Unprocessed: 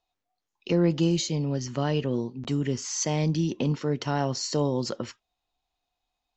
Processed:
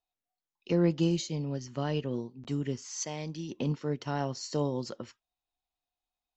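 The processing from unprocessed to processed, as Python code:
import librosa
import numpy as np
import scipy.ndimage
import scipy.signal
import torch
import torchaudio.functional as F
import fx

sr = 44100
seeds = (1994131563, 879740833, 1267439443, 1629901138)

y = fx.low_shelf(x, sr, hz=350.0, db=-8.0, at=(2.86, 3.48), fade=0.02)
y = fx.upward_expand(y, sr, threshold_db=-36.0, expansion=1.5)
y = y * 10.0 ** (-2.5 / 20.0)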